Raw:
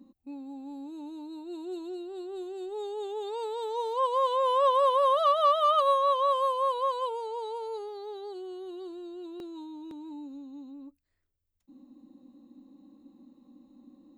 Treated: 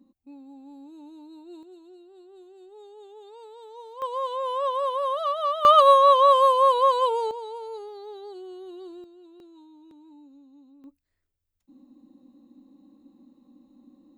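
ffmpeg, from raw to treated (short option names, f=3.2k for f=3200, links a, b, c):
-af "asetnsamples=n=441:p=0,asendcmd='1.63 volume volume -11.5dB;4.02 volume volume -3dB;5.65 volume volume 9dB;7.31 volume volume -0.5dB;9.04 volume volume -9dB;10.84 volume volume 0dB',volume=-4.5dB"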